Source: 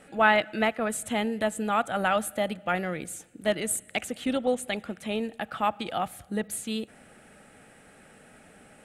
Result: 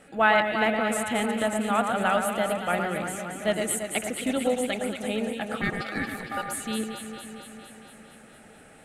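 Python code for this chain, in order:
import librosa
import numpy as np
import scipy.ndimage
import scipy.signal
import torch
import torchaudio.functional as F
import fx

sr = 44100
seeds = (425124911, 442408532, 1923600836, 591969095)

y = fx.ring_mod(x, sr, carrier_hz=1000.0, at=(5.61, 6.49))
y = fx.echo_alternate(y, sr, ms=114, hz=2000.0, feedback_pct=83, wet_db=-5)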